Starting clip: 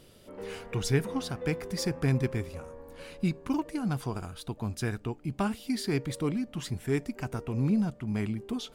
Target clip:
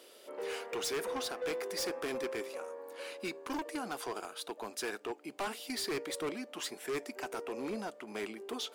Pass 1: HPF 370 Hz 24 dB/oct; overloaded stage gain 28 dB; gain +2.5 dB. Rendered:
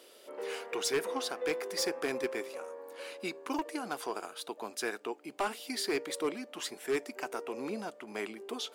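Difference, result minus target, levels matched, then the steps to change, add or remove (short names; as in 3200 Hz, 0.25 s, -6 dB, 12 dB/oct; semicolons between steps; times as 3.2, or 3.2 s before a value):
overloaded stage: distortion -8 dB
change: overloaded stage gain 35 dB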